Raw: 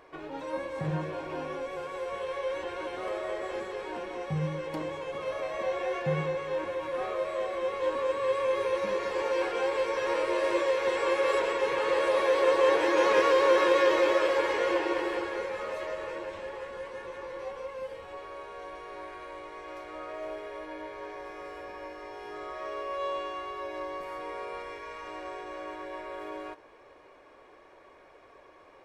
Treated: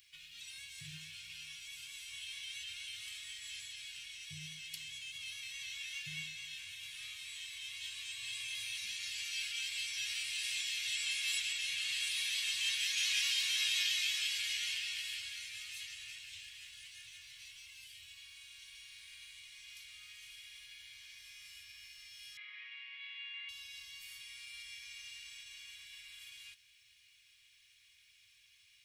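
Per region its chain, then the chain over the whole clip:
22.37–23.49 s: hard clipper -29 dBFS + cabinet simulation 430–2700 Hz, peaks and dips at 520 Hz +10 dB, 740 Hz +8 dB, 1.2 kHz -3 dB, 2 kHz +8 dB + level flattener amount 50%
whole clip: Chebyshev band-stop 110–2800 Hz, order 3; tilt EQ +3.5 dB/octave

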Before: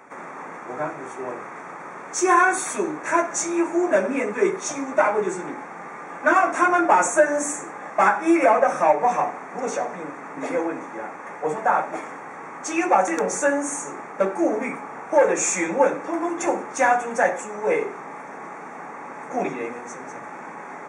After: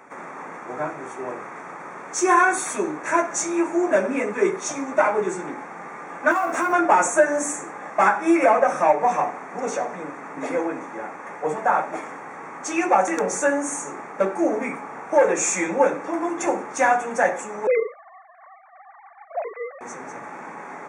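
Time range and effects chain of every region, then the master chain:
6.31–6.73 s: doubling 12 ms -3 dB + compression 4:1, threshold -19 dBFS + short-mantissa float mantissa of 4-bit
17.67–19.81 s: formants replaced by sine waves + expander -38 dBFS
whole clip: none

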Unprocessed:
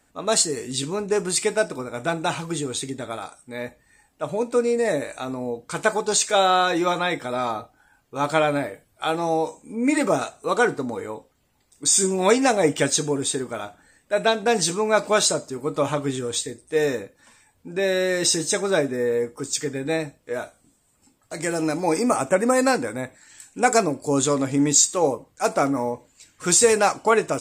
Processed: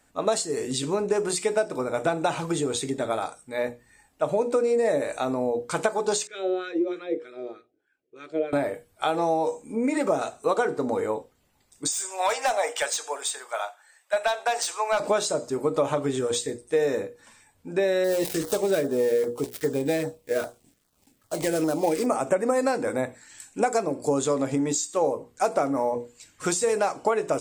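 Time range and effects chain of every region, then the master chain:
6.27–8.53 s: wah-wah 3.2 Hz 510–1500 Hz, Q 2.7 + FFT filter 250 Hz 0 dB, 370 Hz +10 dB, 880 Hz -28 dB, 2.3 kHz 0 dB
11.92–15.00 s: high-pass 690 Hz 24 dB/octave + hard clipper -17.5 dBFS
18.04–22.06 s: dead-time distortion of 0.094 ms + treble shelf 11 kHz +10.5 dB + LFO notch saw down 2.5 Hz 710–2800 Hz
whole clip: hum notches 60/120/180/240/300/360/420/480 Hz; compression 10:1, threshold -25 dBFS; dynamic bell 570 Hz, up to +7 dB, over -41 dBFS, Q 0.7

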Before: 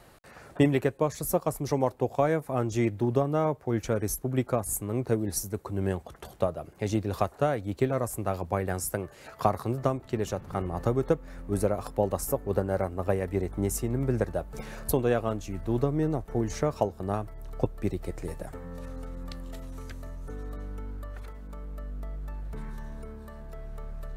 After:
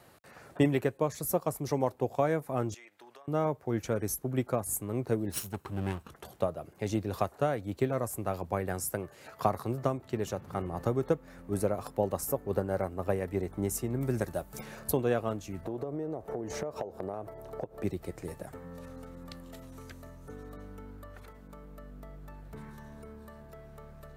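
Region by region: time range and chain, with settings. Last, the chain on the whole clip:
2.74–3.28 s: high-pass 1.2 kHz + treble shelf 9.1 kHz -10 dB + compression 16:1, threshold -45 dBFS
5.32–6.10 s: comb filter that takes the minimum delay 0.75 ms + peaking EQ 3 kHz +4.5 dB 0.33 oct
14.01–14.61 s: treble shelf 4.9 kHz +11.5 dB + band-stop 470 Hz, Q 7.4
15.65–17.84 s: peaking EQ 560 Hz +13.5 dB 1.9 oct + compression 20:1, threshold -28 dBFS
whole clip: high-pass 82 Hz; peaking EQ 14 kHz +4 dB 0.38 oct; trim -3 dB

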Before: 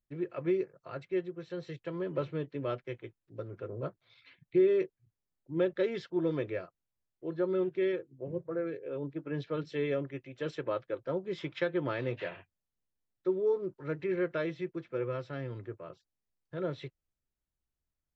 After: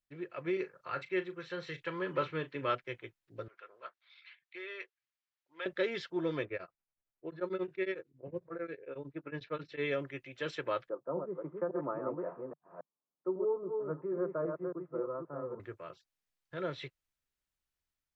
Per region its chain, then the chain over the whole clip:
0.53–2.75 s: peaking EQ 1.4 kHz +5 dB 2.3 oct + band-stop 660 Hz, Q 7 + doubling 38 ms -12.5 dB
3.48–5.66 s: high-pass 1.2 kHz + distance through air 110 m
6.45–9.82 s: level-controlled noise filter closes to 1.4 kHz, open at -26.5 dBFS + band-stop 3.2 kHz, Q 9.3 + tremolo of two beating tones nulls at 11 Hz
10.89–15.60 s: chunks repeated in reverse 274 ms, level -4 dB + Chebyshev band-pass 150–1200 Hz, order 4
whole clip: tilt shelf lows -9 dB, about 1.1 kHz; level rider gain up to 3.5 dB; treble shelf 3.3 kHz -12 dB

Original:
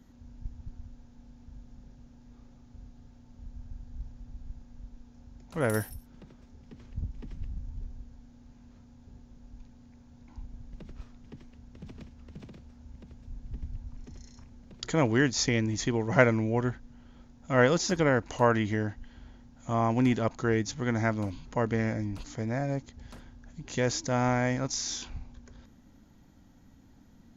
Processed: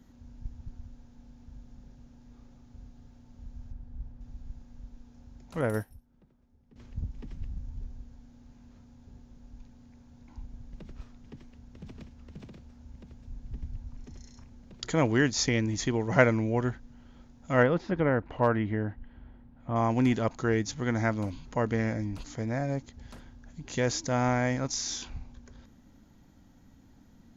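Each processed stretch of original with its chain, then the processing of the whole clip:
3.72–4.21 s: distance through air 56 m + tape noise reduction on one side only decoder only
5.61–6.76 s: treble shelf 2.2 kHz -9 dB + upward expansion, over -51 dBFS
17.63–19.76 s: distance through air 490 m + hard clipper -13.5 dBFS
whole clip: none

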